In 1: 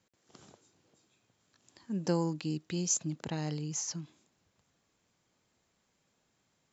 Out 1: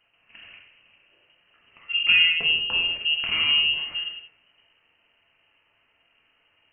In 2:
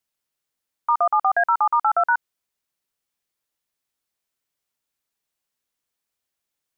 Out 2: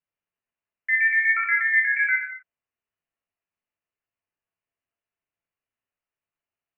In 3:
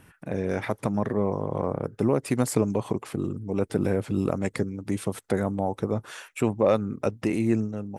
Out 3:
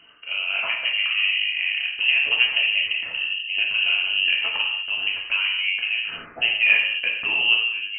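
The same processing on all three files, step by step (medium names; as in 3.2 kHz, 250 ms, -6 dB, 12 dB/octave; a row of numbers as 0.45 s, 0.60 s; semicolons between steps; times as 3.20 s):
gated-style reverb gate 280 ms falling, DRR -2.5 dB; frequency inversion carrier 3 kHz; normalise loudness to -20 LUFS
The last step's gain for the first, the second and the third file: +7.5 dB, -8.5 dB, -1.0 dB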